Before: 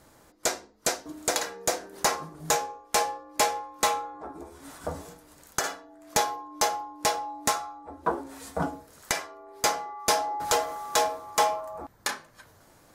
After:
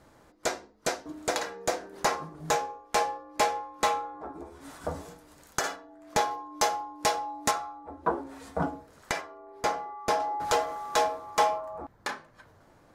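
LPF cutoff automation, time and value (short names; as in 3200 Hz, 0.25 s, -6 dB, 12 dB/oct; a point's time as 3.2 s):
LPF 6 dB/oct
3100 Hz
from 4.61 s 6300 Hz
from 5.76 s 3000 Hz
from 6.31 s 6600 Hz
from 7.51 s 2500 Hz
from 9.21 s 1400 Hz
from 10.2 s 3400 Hz
from 11.58 s 1900 Hz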